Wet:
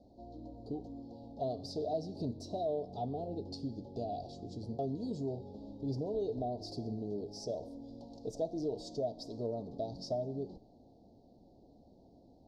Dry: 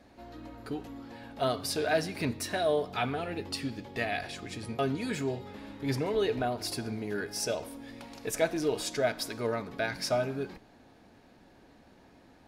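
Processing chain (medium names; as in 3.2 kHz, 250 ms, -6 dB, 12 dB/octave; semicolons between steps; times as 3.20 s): elliptic band-stop 720–4500 Hz, stop band 60 dB; compression 2:1, threshold -33 dBFS, peak gain reduction 6.5 dB; distance through air 180 m; trim -1.5 dB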